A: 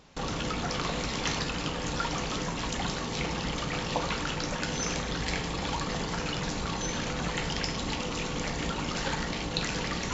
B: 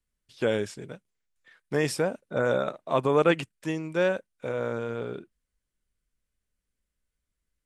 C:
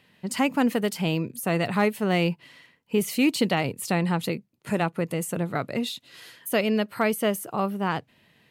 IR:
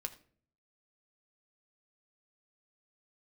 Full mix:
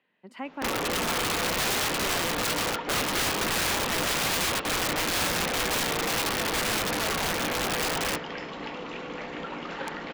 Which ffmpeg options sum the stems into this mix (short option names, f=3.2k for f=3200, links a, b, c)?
-filter_complex "[0:a]acontrast=58,adelay=450,volume=1dB,asplit=2[a][b];[b]volume=-8.5dB[c];[1:a]adelay=1150,volume=0dB[d];[2:a]alimiter=limit=-13.5dB:level=0:latency=1:release=350,dynaudnorm=f=240:g=13:m=9.5dB,volume=-10.5dB,asplit=2[e][f];[f]apad=whole_len=466779[g];[a][g]sidechaingate=range=-33dB:threshold=-60dB:ratio=16:detection=peak[h];[c]aecho=0:1:290|580|870|1160|1450:1|0.34|0.116|0.0393|0.0134[i];[h][d][e][i]amix=inputs=4:normalize=0,acrossover=split=230 3100:gain=0.112 1 0.0794[j][k][l];[j][k][l]amix=inputs=3:normalize=0,aeval=exprs='(mod(11.9*val(0)+1,2)-1)/11.9':c=same"